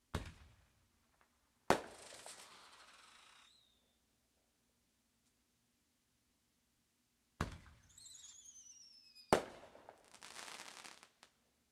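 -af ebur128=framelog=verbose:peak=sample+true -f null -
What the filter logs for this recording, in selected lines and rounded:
Integrated loudness:
  I:         -43.5 LUFS
  Threshold: -56.5 LUFS
Loudness range:
  LRA:        17.0 LU
  Threshold: -68.4 LUFS
  LRA low:   -62.7 LUFS
  LRA high:  -45.6 LUFS
Sample peak:
  Peak:      -13.5 dBFS
True peak:
  Peak:      -13.5 dBFS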